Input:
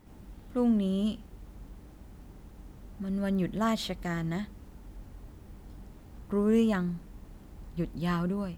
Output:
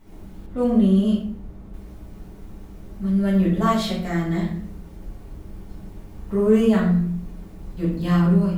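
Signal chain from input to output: shoebox room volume 96 m³, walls mixed, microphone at 1.6 m; 0.46–1.74 mismatched tape noise reduction decoder only

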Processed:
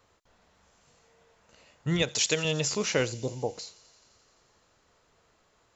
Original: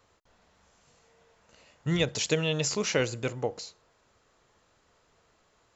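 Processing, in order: 2.02–2.45 tilt +2 dB/oct; 3.12–3.55 elliptic band-stop 970–4000 Hz; thin delay 86 ms, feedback 82%, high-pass 4100 Hz, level -17 dB

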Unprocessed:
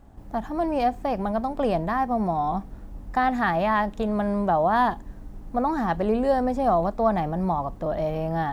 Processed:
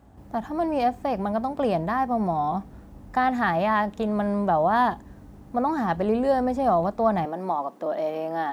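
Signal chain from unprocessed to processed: HPF 56 Hz 24 dB/oct, from 7.25 s 250 Hz

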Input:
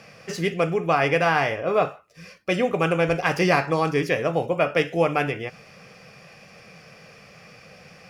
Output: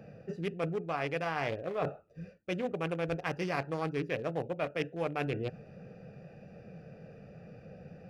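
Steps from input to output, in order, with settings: Wiener smoothing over 41 samples; reverse; compressor 6:1, threshold -34 dBFS, peak gain reduction 17.5 dB; reverse; gain +2.5 dB

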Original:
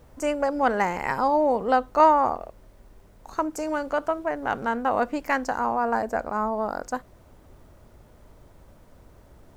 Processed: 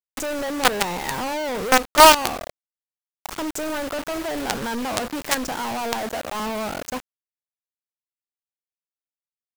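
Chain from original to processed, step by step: 5.57–6.4 steep high-pass 200 Hz 36 dB/oct; companded quantiser 2-bit; mismatched tape noise reduction encoder only; gain -1 dB

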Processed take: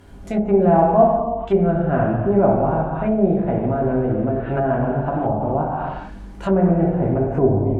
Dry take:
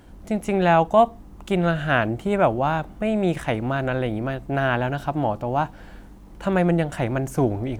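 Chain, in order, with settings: non-linear reverb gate 0.48 s falling, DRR -4 dB; treble ducked by the level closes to 710 Hz, closed at -15.5 dBFS

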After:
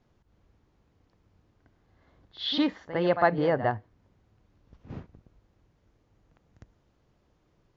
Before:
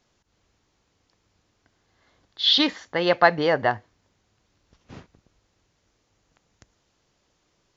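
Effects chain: LPF 1300 Hz 6 dB/oct; low shelf 250 Hz +7.5 dB; in parallel at -2 dB: compressor, threshold -35 dBFS, peak gain reduction 21 dB; on the sum: pre-echo 56 ms -12 dB; gain -5.5 dB

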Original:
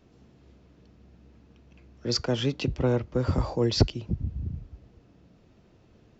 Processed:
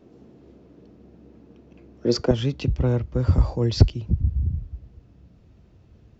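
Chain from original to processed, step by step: bell 360 Hz +13 dB 2.5 oct, from 2.31 s 61 Hz; gain -2 dB

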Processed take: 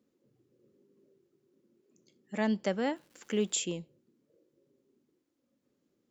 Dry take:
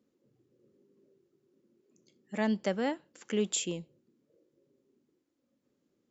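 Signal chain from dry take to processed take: 2.94–3.59 crackle 370/s -53 dBFS

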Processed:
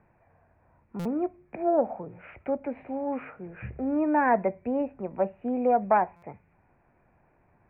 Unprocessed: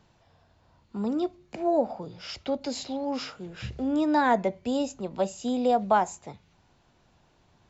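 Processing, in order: self-modulated delay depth 0.064 ms; rippled Chebyshev low-pass 2500 Hz, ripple 3 dB; stuck buffer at 0.99/6.16, samples 256, times 10; gain +1 dB

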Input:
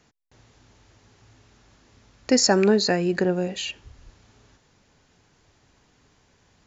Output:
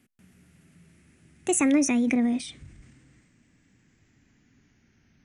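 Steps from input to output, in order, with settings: speed glide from 167% -> 87%; transient shaper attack +1 dB, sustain +5 dB; graphic EQ 125/250/500/1000/2000/4000 Hz +3/+10/-8/-10/+7/-8 dB; gain -4.5 dB

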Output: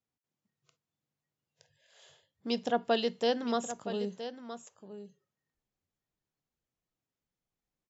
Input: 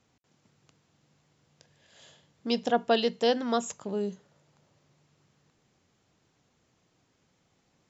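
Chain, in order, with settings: echo 0.969 s -11.5 dB; spectral noise reduction 19 dB; gain -4 dB

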